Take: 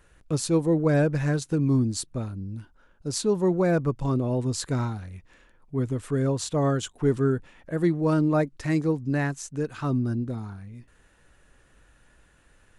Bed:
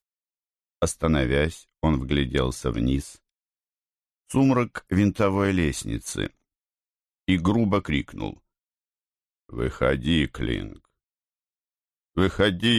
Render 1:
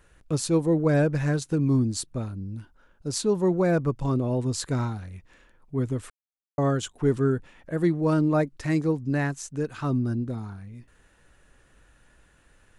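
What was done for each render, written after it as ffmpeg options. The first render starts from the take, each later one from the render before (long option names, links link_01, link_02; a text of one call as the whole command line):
ffmpeg -i in.wav -filter_complex "[0:a]asplit=3[link_01][link_02][link_03];[link_01]atrim=end=6.1,asetpts=PTS-STARTPTS,afade=type=out:start_time=6.096:duration=0.004:curve=hsin[link_04];[link_02]atrim=start=6.1:end=6.58,asetpts=PTS-STARTPTS,volume=0[link_05];[link_03]atrim=start=6.58,asetpts=PTS-STARTPTS,afade=type=in:duration=0.004:curve=hsin[link_06];[link_04][link_05][link_06]concat=n=3:v=0:a=1" out.wav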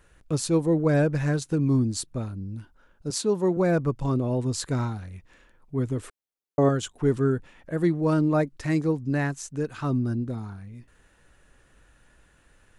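ffmpeg -i in.wav -filter_complex "[0:a]asettb=1/sr,asplit=3[link_01][link_02][link_03];[link_01]atrim=end=3.104[link_04];[link_02]atrim=start=3.1:end=3.57,asetpts=PTS-STARTPTS,afade=type=in:duration=0.004:curve=qsin,afade=type=out:start_time=0.466:duration=0.004:curve=qsin,highpass=170[link_05];[link_03]atrim=start=3.566[link_06];[link_04][link_05]acrossfade=duration=0.004:curve1=hsin:curve2=qsin[link_07];[link_07][link_06]acrossfade=duration=0.004:curve1=qsin:curve2=hsin,asettb=1/sr,asplit=3[link_08][link_09][link_10];[link_08]atrim=end=5.974[link_11];[link_09]atrim=start=5.97:end=6.69,asetpts=PTS-STARTPTS,afade=type=in:duration=0.004:curve=qsin,afade=type=out:start_time=0.716:duration=0.004:curve=qsin,equalizer=frequency=390:width=1.3:gain=8[link_12];[link_10]atrim=start=6.686[link_13];[link_11][link_12]acrossfade=duration=0.004:curve1=hsin:curve2=qsin[link_14];[link_14][link_13]acrossfade=duration=0.004:curve1=qsin:curve2=hsin" out.wav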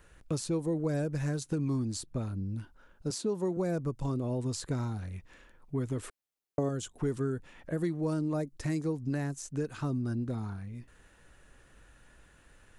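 ffmpeg -i in.wav -filter_complex "[0:a]acrossover=split=660|5300[link_01][link_02][link_03];[link_01]acompressor=threshold=-30dB:ratio=4[link_04];[link_02]acompressor=threshold=-46dB:ratio=4[link_05];[link_03]acompressor=threshold=-42dB:ratio=4[link_06];[link_04][link_05][link_06]amix=inputs=3:normalize=0" out.wav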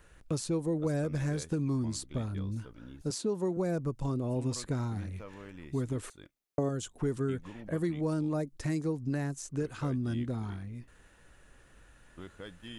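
ffmpeg -i in.wav -i bed.wav -filter_complex "[1:a]volume=-25.5dB[link_01];[0:a][link_01]amix=inputs=2:normalize=0" out.wav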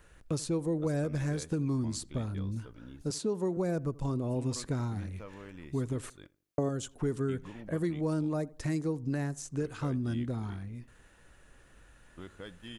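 ffmpeg -i in.wav -filter_complex "[0:a]asplit=2[link_01][link_02];[link_02]adelay=83,lowpass=frequency=1400:poles=1,volume=-21dB,asplit=2[link_03][link_04];[link_04]adelay=83,lowpass=frequency=1400:poles=1,volume=0.35,asplit=2[link_05][link_06];[link_06]adelay=83,lowpass=frequency=1400:poles=1,volume=0.35[link_07];[link_01][link_03][link_05][link_07]amix=inputs=4:normalize=0" out.wav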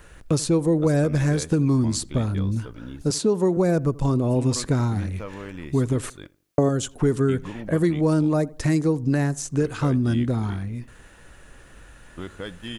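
ffmpeg -i in.wav -af "volume=11dB" out.wav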